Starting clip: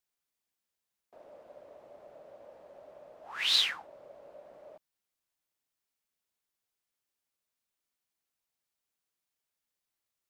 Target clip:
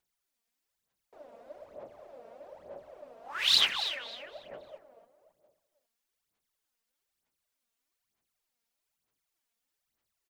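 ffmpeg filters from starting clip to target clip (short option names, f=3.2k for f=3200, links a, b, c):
-filter_complex "[0:a]asplit=2[a][b];[b]adelay=273,lowpass=f=3.6k:p=1,volume=-7dB,asplit=2[c][d];[d]adelay=273,lowpass=f=3.6k:p=1,volume=0.38,asplit=2[e][f];[f]adelay=273,lowpass=f=3.6k:p=1,volume=0.38,asplit=2[g][h];[h]adelay=273,lowpass=f=3.6k:p=1,volume=0.38[i];[a][c][e][g][i]amix=inputs=5:normalize=0,aphaser=in_gain=1:out_gain=1:delay=4.4:decay=0.65:speed=1.1:type=sinusoidal"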